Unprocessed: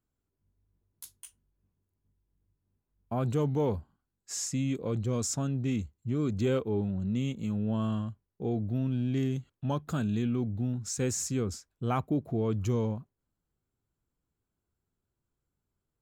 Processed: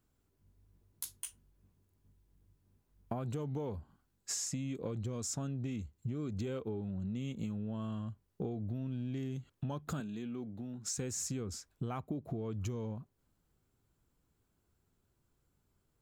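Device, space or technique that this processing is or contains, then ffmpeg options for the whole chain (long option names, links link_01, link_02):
serial compression, leveller first: -filter_complex "[0:a]acompressor=threshold=-32dB:ratio=2.5,acompressor=threshold=-44dB:ratio=5,asettb=1/sr,asplit=3[link_01][link_02][link_03];[link_01]atrim=end=10.004[link_04];[link_02]atrim=start=10:end=10.95,asetpts=PTS-STARTPTS,afade=type=in:duration=0.004:curve=qsin,afade=type=out:start_time=0.946:duration=0.004:curve=qsin,highpass=200[link_05];[link_03]atrim=start=10.946[link_06];[link_04][link_05]acrossfade=duration=0.004:curve1=hsin:curve2=qsin[link_07];[link_07][link_06]acrossfade=duration=0.004:curve1=qsin:curve2=hsin,volume=7.5dB"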